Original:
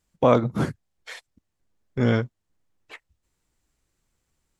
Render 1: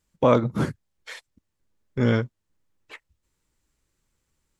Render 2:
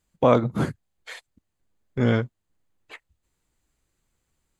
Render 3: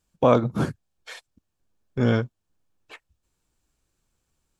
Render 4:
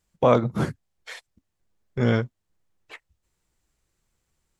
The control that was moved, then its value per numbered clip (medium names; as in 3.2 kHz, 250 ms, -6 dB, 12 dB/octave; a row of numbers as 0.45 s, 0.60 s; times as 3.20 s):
band-stop, frequency: 720 Hz, 5.5 kHz, 2 kHz, 270 Hz